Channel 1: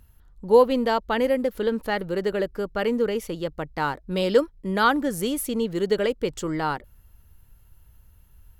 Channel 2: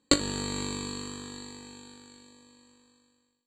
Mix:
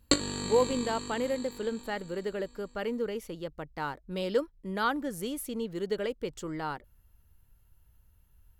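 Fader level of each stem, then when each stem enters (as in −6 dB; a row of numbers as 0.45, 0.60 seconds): −9.0, −2.5 decibels; 0.00, 0.00 seconds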